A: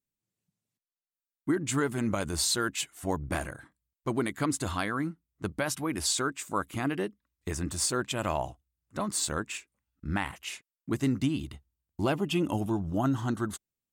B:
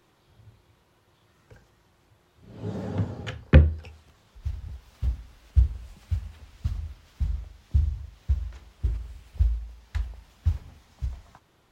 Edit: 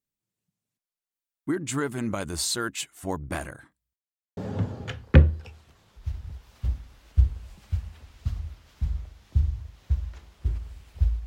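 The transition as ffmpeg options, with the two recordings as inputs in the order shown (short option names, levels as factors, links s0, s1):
-filter_complex "[0:a]apad=whole_dur=11.26,atrim=end=11.26,asplit=2[s0][s1];[s0]atrim=end=3.96,asetpts=PTS-STARTPTS,afade=t=out:st=3.956:d=0.004:c=hsin[s2];[s1]atrim=start=3.96:end=4.37,asetpts=PTS-STARTPTS,volume=0[s3];[1:a]atrim=start=2.76:end=9.65,asetpts=PTS-STARTPTS,afade=t=in:d=0.004:c=hsin[s4];[s2][s3][s4]concat=n=3:v=0:a=1"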